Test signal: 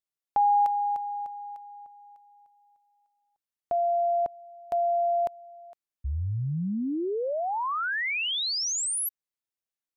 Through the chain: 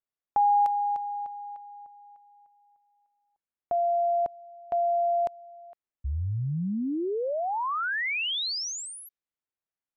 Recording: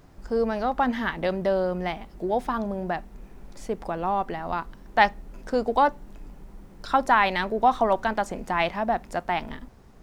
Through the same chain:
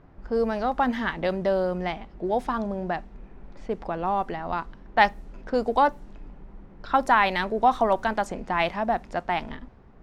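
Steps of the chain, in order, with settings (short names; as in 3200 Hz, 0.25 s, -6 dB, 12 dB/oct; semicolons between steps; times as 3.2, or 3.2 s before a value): low-pass opened by the level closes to 2000 Hz, open at -20 dBFS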